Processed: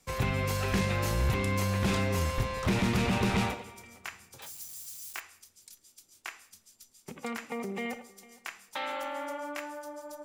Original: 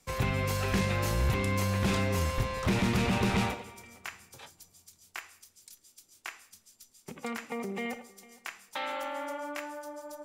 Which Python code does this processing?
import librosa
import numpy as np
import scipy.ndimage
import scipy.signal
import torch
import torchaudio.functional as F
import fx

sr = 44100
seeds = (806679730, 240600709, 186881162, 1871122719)

y = fx.crossing_spikes(x, sr, level_db=-39.5, at=(4.42, 5.2))